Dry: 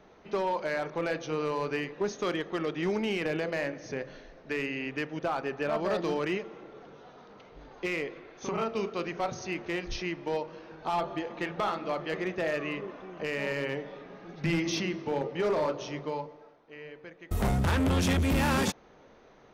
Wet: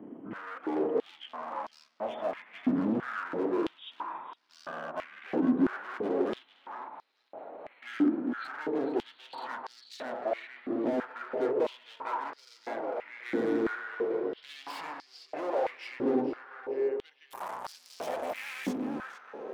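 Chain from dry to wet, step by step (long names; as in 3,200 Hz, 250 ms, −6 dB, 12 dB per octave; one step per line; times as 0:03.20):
pitch glide at a constant tempo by −12 semitones ending unshifted
high-shelf EQ 7,500 Hz +9 dB
hard clipping −37.5 dBFS, distortion −4 dB
tilt shelving filter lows +8.5 dB, about 1,500 Hz
tape delay 449 ms, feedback 54%, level −4.5 dB, low-pass 2,900 Hz
high-pass on a step sequencer 3 Hz 280–4,900 Hz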